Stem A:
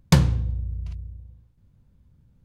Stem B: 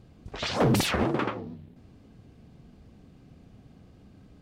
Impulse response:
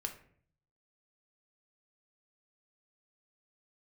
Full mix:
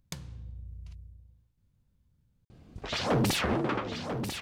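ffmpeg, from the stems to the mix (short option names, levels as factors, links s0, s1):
-filter_complex "[0:a]highshelf=f=2100:g=8,acompressor=threshold=0.0501:ratio=12,volume=0.251[s0];[1:a]asoftclip=type=tanh:threshold=0.0891,adelay=2500,volume=0.944,asplit=2[s1][s2];[s2]volume=0.398,aecho=0:1:992:1[s3];[s0][s1][s3]amix=inputs=3:normalize=0"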